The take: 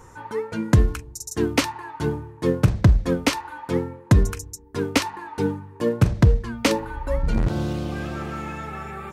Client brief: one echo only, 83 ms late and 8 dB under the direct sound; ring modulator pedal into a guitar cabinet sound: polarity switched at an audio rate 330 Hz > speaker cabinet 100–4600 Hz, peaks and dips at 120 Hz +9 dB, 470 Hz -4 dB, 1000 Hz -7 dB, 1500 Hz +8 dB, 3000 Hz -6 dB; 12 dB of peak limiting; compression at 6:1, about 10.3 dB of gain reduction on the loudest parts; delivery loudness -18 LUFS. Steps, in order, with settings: compressor 6:1, threshold -21 dBFS; limiter -20 dBFS; echo 83 ms -8 dB; polarity switched at an audio rate 330 Hz; speaker cabinet 100–4600 Hz, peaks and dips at 120 Hz +9 dB, 470 Hz -4 dB, 1000 Hz -7 dB, 1500 Hz +8 dB, 3000 Hz -6 dB; gain +12 dB

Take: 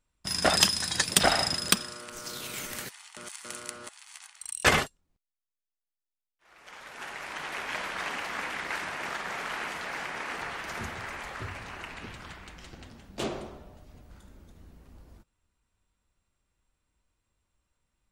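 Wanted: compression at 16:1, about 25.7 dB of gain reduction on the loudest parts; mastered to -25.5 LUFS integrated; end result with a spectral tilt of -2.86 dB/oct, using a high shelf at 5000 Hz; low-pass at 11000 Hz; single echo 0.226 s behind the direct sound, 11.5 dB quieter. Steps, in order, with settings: LPF 11000 Hz; high shelf 5000 Hz -7 dB; compressor 16:1, threshold -45 dBFS; echo 0.226 s -11.5 dB; gain +23 dB

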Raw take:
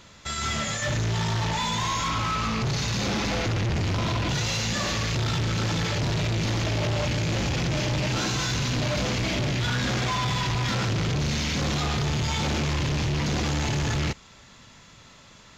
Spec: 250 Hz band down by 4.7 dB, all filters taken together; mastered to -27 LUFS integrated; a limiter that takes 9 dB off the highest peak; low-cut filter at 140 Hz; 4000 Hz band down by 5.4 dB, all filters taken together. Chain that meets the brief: HPF 140 Hz; bell 250 Hz -5.5 dB; bell 4000 Hz -7 dB; gain +9 dB; limiter -18.5 dBFS

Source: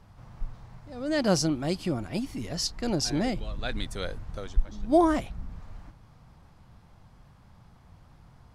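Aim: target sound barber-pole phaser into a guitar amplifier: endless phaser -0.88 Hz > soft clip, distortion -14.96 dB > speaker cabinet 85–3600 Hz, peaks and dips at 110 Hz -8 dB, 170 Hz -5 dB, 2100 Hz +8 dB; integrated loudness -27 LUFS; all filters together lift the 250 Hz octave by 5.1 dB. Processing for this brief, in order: bell 250 Hz +8 dB; endless phaser -0.88 Hz; soft clip -18.5 dBFS; speaker cabinet 85–3600 Hz, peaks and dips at 110 Hz -8 dB, 170 Hz -5 dB, 2100 Hz +8 dB; gain +4.5 dB

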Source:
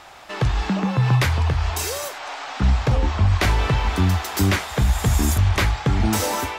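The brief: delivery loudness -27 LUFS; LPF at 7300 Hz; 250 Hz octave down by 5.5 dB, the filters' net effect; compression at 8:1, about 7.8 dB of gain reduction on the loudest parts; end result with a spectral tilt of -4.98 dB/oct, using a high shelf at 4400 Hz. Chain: LPF 7300 Hz; bell 250 Hz -8.5 dB; high shelf 4400 Hz -3.5 dB; compressor 8:1, threshold -22 dBFS; gain +0.5 dB

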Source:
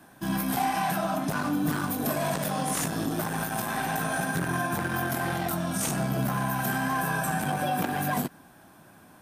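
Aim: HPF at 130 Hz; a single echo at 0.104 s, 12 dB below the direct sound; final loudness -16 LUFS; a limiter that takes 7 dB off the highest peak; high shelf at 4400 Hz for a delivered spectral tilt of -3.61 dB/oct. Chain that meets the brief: HPF 130 Hz; high shelf 4400 Hz +5 dB; limiter -21.5 dBFS; echo 0.104 s -12 dB; gain +14 dB

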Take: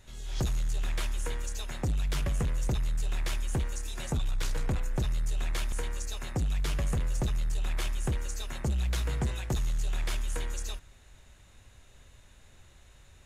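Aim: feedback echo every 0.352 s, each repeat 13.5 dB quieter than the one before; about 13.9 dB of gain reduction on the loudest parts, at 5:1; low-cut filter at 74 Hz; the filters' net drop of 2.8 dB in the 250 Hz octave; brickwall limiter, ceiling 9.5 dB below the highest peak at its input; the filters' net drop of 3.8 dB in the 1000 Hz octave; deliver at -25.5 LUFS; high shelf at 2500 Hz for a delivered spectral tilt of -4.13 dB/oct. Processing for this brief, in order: HPF 74 Hz; bell 250 Hz -4 dB; bell 1000 Hz -3.5 dB; high shelf 2500 Hz -7 dB; compressor 5:1, threshold -44 dBFS; limiter -40 dBFS; feedback echo 0.352 s, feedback 21%, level -13.5 dB; gain +25 dB

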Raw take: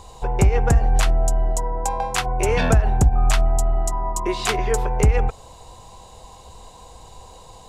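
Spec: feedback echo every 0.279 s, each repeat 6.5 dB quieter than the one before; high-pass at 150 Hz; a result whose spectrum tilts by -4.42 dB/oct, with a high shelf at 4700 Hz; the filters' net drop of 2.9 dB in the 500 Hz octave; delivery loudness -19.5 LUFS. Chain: HPF 150 Hz; bell 500 Hz -3.5 dB; high shelf 4700 Hz -6.5 dB; feedback echo 0.279 s, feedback 47%, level -6.5 dB; gain +6.5 dB

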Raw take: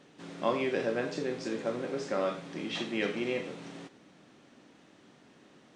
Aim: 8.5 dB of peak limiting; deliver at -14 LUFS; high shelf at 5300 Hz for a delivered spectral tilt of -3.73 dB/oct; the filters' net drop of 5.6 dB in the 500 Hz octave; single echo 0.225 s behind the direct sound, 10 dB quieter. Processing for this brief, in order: bell 500 Hz -7 dB; high shelf 5300 Hz -8.5 dB; limiter -26.5 dBFS; echo 0.225 s -10 dB; gain +24.5 dB

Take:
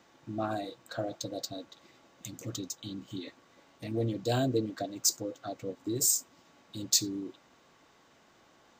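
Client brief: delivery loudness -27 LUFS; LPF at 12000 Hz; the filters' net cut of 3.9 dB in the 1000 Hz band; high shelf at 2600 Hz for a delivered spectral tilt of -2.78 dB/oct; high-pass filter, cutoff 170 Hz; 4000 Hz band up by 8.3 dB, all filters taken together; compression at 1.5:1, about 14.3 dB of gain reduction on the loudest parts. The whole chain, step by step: HPF 170 Hz; LPF 12000 Hz; bell 1000 Hz -8 dB; high shelf 2600 Hz +6.5 dB; bell 4000 Hz +4.5 dB; compressor 1.5:1, threshold -56 dBFS; gain +13.5 dB

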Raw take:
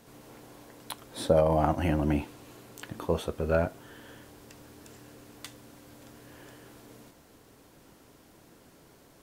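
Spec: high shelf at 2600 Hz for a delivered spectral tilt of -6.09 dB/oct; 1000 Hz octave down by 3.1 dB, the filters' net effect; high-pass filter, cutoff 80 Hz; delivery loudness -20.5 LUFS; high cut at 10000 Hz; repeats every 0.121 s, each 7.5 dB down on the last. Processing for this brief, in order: HPF 80 Hz; LPF 10000 Hz; bell 1000 Hz -4 dB; high shelf 2600 Hz -4.5 dB; feedback echo 0.121 s, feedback 42%, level -7.5 dB; gain +8 dB

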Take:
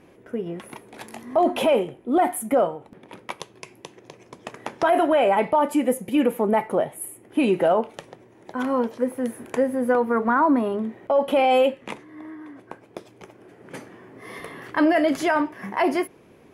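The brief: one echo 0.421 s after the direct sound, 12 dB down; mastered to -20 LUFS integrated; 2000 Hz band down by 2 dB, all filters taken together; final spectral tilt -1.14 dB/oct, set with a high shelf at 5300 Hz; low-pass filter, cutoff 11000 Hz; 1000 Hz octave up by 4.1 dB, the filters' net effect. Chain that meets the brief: LPF 11000 Hz; bell 1000 Hz +6.5 dB; bell 2000 Hz -4.5 dB; high shelf 5300 Hz -7.5 dB; echo 0.421 s -12 dB; gain +0.5 dB

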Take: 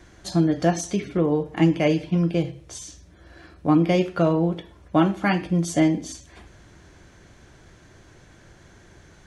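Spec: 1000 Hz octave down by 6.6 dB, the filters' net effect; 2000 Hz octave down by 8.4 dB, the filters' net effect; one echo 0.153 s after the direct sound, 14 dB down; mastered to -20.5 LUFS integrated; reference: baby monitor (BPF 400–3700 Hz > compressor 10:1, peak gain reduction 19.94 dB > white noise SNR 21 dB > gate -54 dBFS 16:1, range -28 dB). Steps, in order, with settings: BPF 400–3700 Hz; bell 1000 Hz -8 dB; bell 2000 Hz -7.5 dB; echo 0.153 s -14 dB; compressor 10:1, threshold -40 dBFS; white noise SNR 21 dB; gate -54 dBFS 16:1, range -28 dB; gain +24.5 dB

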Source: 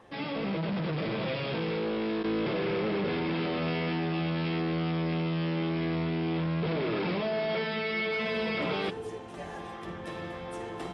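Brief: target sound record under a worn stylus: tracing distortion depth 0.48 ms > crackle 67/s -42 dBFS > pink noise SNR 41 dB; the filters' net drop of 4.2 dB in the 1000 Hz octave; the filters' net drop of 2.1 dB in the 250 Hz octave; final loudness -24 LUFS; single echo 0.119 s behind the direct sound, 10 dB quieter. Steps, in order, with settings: bell 250 Hz -3 dB; bell 1000 Hz -5.5 dB; echo 0.119 s -10 dB; tracing distortion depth 0.48 ms; crackle 67/s -42 dBFS; pink noise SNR 41 dB; gain +9 dB

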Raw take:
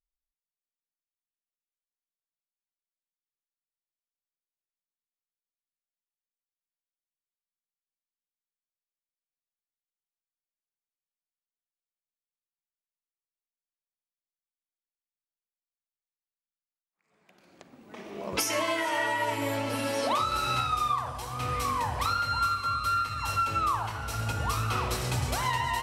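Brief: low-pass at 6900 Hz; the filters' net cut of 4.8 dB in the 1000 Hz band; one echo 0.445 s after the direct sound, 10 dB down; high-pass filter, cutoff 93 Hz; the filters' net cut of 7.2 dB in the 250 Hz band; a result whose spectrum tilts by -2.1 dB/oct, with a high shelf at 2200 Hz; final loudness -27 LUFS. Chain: HPF 93 Hz; LPF 6900 Hz; bell 250 Hz -9 dB; bell 1000 Hz -8.5 dB; high shelf 2200 Hz +6.5 dB; echo 0.445 s -10 dB; gain +2.5 dB

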